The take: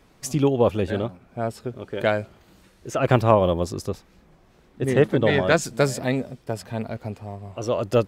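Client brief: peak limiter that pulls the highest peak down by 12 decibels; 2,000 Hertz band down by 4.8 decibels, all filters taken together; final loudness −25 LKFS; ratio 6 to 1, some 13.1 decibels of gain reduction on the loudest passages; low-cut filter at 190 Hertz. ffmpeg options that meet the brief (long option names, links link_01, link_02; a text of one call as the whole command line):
ffmpeg -i in.wav -af "highpass=190,equalizer=frequency=2000:width_type=o:gain=-6.5,acompressor=threshold=-27dB:ratio=6,volume=13.5dB,alimiter=limit=-13.5dB:level=0:latency=1" out.wav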